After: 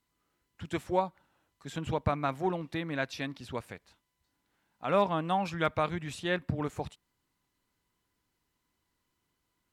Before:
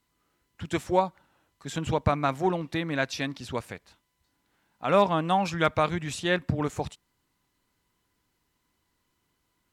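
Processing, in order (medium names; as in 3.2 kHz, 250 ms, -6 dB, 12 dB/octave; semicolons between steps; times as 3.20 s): dynamic bell 6.5 kHz, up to -5 dB, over -53 dBFS, Q 1.2; trim -5 dB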